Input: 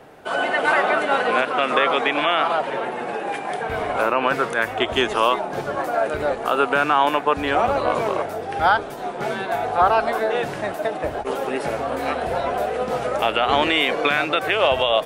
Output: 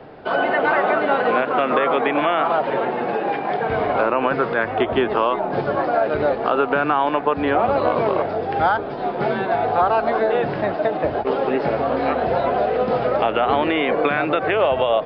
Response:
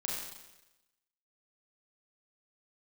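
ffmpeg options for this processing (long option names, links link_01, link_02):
-filter_complex "[0:a]tiltshelf=frequency=970:gain=3.5,aresample=11025,aresample=44100,acrossover=split=83|2500[link_01][link_02][link_03];[link_01]acompressor=threshold=-53dB:ratio=4[link_04];[link_02]acompressor=threshold=-18dB:ratio=4[link_05];[link_03]acompressor=threshold=-45dB:ratio=4[link_06];[link_04][link_05][link_06]amix=inputs=3:normalize=0,volume=3.5dB"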